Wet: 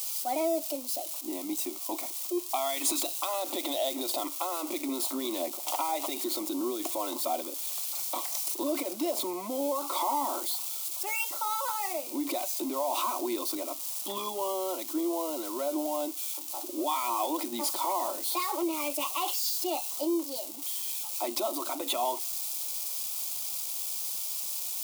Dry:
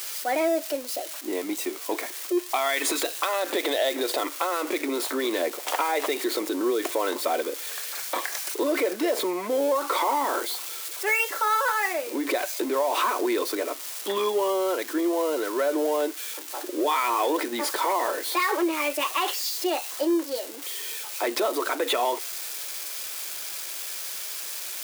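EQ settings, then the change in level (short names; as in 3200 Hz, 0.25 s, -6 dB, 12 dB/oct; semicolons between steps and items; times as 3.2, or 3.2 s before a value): low shelf 190 Hz +5 dB; high shelf 5800 Hz +5.5 dB; fixed phaser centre 450 Hz, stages 6; -4.0 dB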